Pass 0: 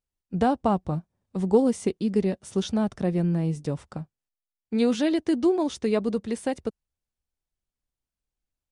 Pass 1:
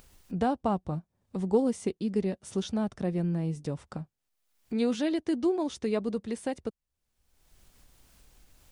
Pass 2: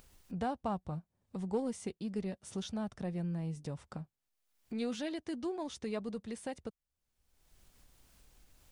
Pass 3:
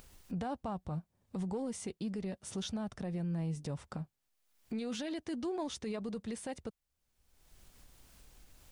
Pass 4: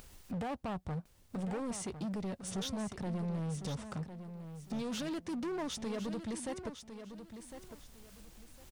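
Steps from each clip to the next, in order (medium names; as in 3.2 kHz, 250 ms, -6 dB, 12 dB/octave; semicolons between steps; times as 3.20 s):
upward compressor, threshold -26 dBFS; trim -5 dB
dynamic bell 340 Hz, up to -6 dB, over -40 dBFS, Q 1.1; in parallel at -10.5 dB: saturation -35 dBFS, distortion -7 dB; on the sum: trim -6.5 dB
peak limiter -34.5 dBFS, peak gain reduction 9.5 dB; trim +4 dB
hard clipper -38 dBFS, distortion -11 dB; on a send: feedback delay 1055 ms, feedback 25%, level -10 dB; on the sum: trim +3 dB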